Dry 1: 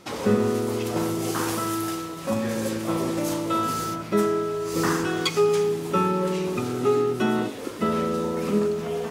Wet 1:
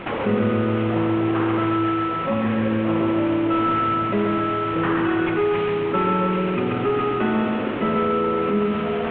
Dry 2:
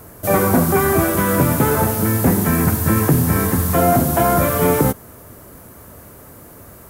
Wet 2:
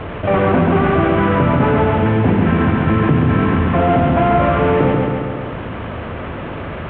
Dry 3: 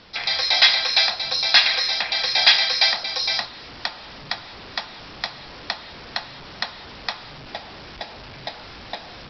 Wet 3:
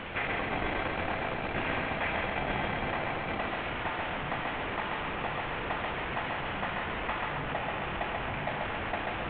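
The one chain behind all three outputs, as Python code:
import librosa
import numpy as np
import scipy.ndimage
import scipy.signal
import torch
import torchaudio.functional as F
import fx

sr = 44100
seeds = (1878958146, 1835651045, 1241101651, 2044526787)

p1 = fx.cvsd(x, sr, bps=16000)
p2 = fx.hum_notches(p1, sr, base_hz=60, count=7)
p3 = p2 + fx.echo_feedback(p2, sr, ms=136, feedback_pct=48, wet_db=-4.0, dry=0)
y = fx.env_flatten(p3, sr, amount_pct=50)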